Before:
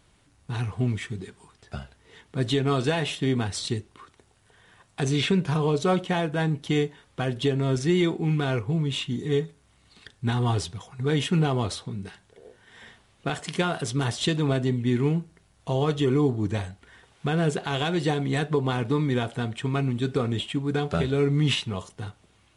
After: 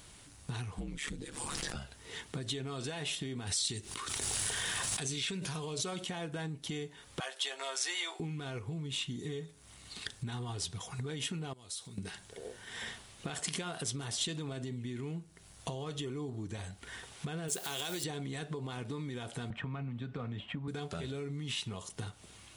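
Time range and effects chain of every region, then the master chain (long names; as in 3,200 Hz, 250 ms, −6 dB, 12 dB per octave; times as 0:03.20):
0:00.78–0:01.75: ring modulation 72 Hz + background raised ahead of every attack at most 36 dB per second
0:03.47–0:06.09: high-shelf EQ 2,100 Hz +8.5 dB + background raised ahead of every attack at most 25 dB per second
0:07.20–0:08.20: high-pass filter 670 Hz 24 dB per octave + double-tracking delay 15 ms −6 dB
0:11.53–0:11.98: first-order pre-emphasis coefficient 0.8 + downward compressor 3 to 1, threshold −50 dBFS
0:17.48–0:18.04: hold until the input has moved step −46.5 dBFS + bass and treble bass −8 dB, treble +10 dB
0:19.50–0:20.68: low-pass filter 1,800 Hz + parametric band 370 Hz −11.5 dB 0.5 octaves + multiband upward and downward compressor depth 70%
whole clip: brickwall limiter −19.5 dBFS; downward compressor 8 to 1, threshold −41 dBFS; high-shelf EQ 3,900 Hz +11.5 dB; level +3.5 dB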